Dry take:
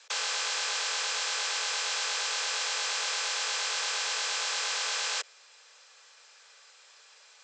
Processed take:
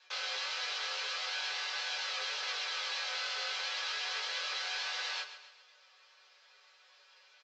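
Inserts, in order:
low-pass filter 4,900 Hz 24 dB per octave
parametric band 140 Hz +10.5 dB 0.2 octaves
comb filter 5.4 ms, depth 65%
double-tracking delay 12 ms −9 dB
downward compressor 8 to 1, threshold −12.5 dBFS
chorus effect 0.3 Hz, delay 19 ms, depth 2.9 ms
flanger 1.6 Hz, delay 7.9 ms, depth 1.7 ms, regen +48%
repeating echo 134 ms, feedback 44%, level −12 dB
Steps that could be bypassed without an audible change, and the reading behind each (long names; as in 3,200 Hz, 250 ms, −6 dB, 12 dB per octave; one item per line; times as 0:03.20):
parametric band 140 Hz: nothing at its input below 380 Hz
downward compressor, threshold −12.5 dBFS: peak of its input −19.0 dBFS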